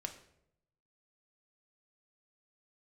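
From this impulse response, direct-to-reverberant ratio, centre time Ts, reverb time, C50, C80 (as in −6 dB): 4.0 dB, 13 ms, 0.75 s, 11.0 dB, 13.5 dB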